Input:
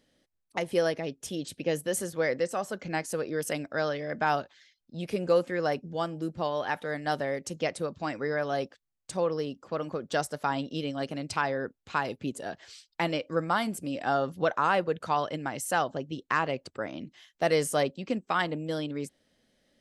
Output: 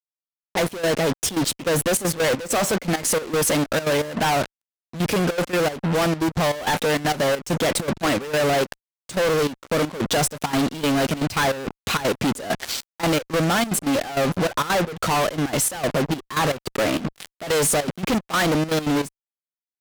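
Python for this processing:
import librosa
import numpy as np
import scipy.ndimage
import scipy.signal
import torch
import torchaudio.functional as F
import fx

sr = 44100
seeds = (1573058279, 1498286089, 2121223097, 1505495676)

y = fx.rider(x, sr, range_db=5, speed_s=2.0)
y = fx.fuzz(y, sr, gain_db=51.0, gate_db=-46.0)
y = fx.step_gate(y, sr, bpm=198, pattern='xxxx.x.xx..', floor_db=-12.0, edge_ms=4.5)
y = y * 10.0 ** (-5.0 / 20.0)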